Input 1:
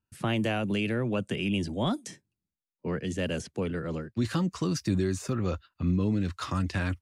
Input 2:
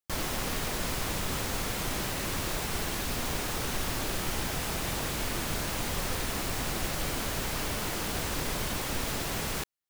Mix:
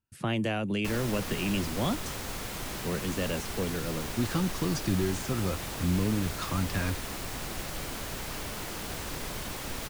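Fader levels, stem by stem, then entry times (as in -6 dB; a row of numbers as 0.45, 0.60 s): -1.5, -4.5 dB; 0.00, 0.75 s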